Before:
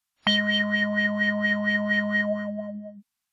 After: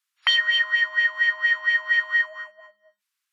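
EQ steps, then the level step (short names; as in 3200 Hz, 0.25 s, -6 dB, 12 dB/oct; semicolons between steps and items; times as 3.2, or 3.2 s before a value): HPF 1200 Hz 24 dB/oct; high shelf 3600 Hz -6 dB; +6.0 dB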